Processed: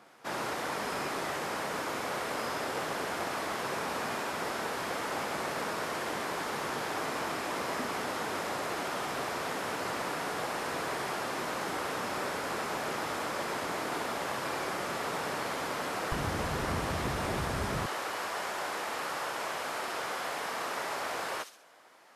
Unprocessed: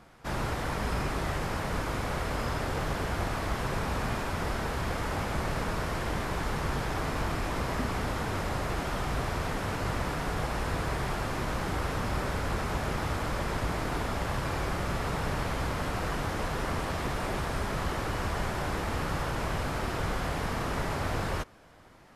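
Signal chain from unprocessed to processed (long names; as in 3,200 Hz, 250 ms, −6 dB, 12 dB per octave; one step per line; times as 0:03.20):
high-pass filter 300 Hz 12 dB per octave, from 0:16.12 62 Hz, from 0:17.86 510 Hz
delay with a high-pass on its return 65 ms, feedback 41%, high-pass 4,200 Hz, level −3 dB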